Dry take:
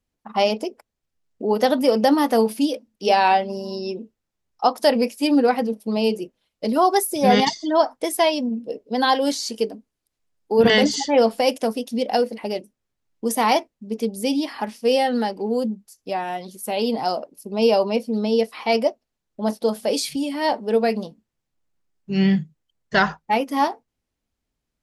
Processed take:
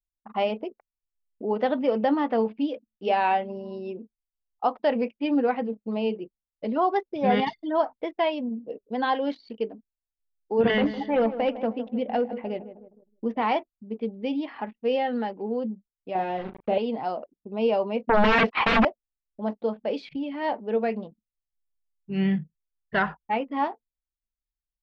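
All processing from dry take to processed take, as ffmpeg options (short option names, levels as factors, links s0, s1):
-filter_complex "[0:a]asettb=1/sr,asplit=3[s0][s1][s2];[s0]atrim=end=10.714[s3];[s1]atrim=start=10.71:end=13.42,asetpts=PTS-STARTPTS,afade=t=in:d=0.004:c=qsin,afade=t=out:st=2.706:d=0.004:c=qsin,bass=f=250:g=5,treble=f=4000:g=-7,asoftclip=type=hard:threshold=0.266,asplit=2[s4][s5];[s5]adelay=156,lowpass=f=1400:p=1,volume=0.251,asplit=2[s6][s7];[s7]adelay=156,lowpass=f=1400:p=1,volume=0.52,asplit=2[s8][s9];[s9]adelay=156,lowpass=f=1400:p=1,volume=0.52,asplit=2[s10][s11];[s11]adelay=156,lowpass=f=1400:p=1,volume=0.52,asplit=2[s12][s13];[s13]adelay=156,lowpass=f=1400:p=1,volume=0.52[s14];[s4][s6][s8][s10][s12][s14]amix=inputs=6:normalize=0,atrim=end_sample=119511[s15];[s2]atrim=start=13.416[s16];[s3][s15]acrossfade=d=0.004:c1=hsin:c2=qsin[s17];[s17][s16]acrossfade=d=0.004:c1=qsin:c2=hsin,asettb=1/sr,asplit=3[s18][s19][s20];[s18]atrim=end=16.154[s21];[s19]atrim=start=16.15:end=16.78,asetpts=PTS-STARTPTS,afade=t=in:d=0.004:c=qsin,afade=t=out:st=0.626:d=0.004:c=qsin,lowshelf=f=800:t=q:w=1.5:g=7.5,aeval=exprs='val(0)*gte(abs(val(0)),0.0355)':c=same,asplit=2[s22][s23];[s23]adelay=37,volume=0.398[s24];[s22][s24]amix=inputs=2:normalize=0,atrim=end_sample=27783[s25];[s20]atrim=start=16.776[s26];[s21][s25]acrossfade=d=0.004:c1=hsin:c2=qsin[s27];[s27][s26]acrossfade=d=0.004:c1=qsin:c2=hsin,asettb=1/sr,asplit=3[s28][s29][s30];[s28]atrim=end=18.094[s31];[s29]atrim=start=18.09:end=18.85,asetpts=PTS-STARTPTS,afade=t=in:d=0.004:c=qsin,afade=t=out:st=0.756:d=0.004:c=qsin,agate=range=0.0708:threshold=0.0126:ratio=16:release=100:detection=peak,equalizer=f=570:w=1.9:g=-3.5,aeval=exprs='0.355*sin(PI/2*7.94*val(0)/0.355)':c=same[s32];[s30]atrim=start=18.846[s33];[s31][s32]acrossfade=d=0.004:c1=hsin:c2=qsin[s34];[s34][s33]acrossfade=d=0.004:c1=qsin:c2=hsin,lowpass=f=3000:w=0.5412,lowpass=f=3000:w=1.3066,anlmdn=0.158,volume=0.501"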